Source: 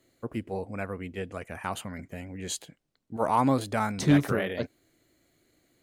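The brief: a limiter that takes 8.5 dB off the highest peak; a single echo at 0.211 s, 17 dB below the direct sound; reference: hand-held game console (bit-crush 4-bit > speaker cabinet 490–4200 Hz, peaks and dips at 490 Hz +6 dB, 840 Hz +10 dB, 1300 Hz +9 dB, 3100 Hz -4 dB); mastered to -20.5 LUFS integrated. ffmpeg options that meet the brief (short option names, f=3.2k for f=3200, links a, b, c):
-af "alimiter=limit=-20.5dB:level=0:latency=1,aecho=1:1:211:0.141,acrusher=bits=3:mix=0:aa=0.000001,highpass=490,equalizer=f=490:t=q:w=4:g=6,equalizer=f=840:t=q:w=4:g=10,equalizer=f=1.3k:t=q:w=4:g=9,equalizer=f=3.1k:t=q:w=4:g=-4,lowpass=f=4.2k:w=0.5412,lowpass=f=4.2k:w=1.3066,volume=11dB"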